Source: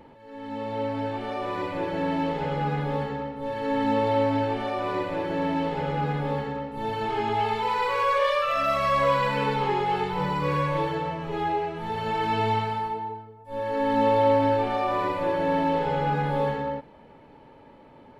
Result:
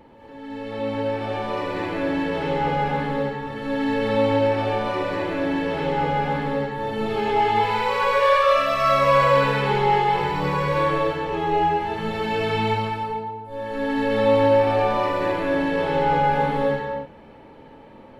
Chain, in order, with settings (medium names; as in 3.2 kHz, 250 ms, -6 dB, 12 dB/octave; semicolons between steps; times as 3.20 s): gated-style reverb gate 270 ms rising, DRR -4 dB